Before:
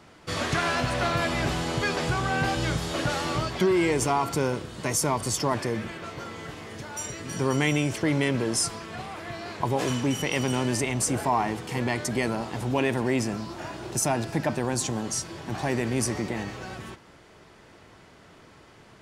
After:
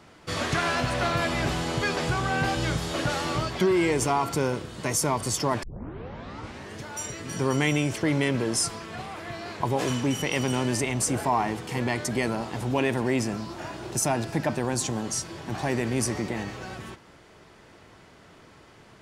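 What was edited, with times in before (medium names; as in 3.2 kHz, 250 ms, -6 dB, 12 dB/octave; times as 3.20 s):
5.63 s: tape start 1.15 s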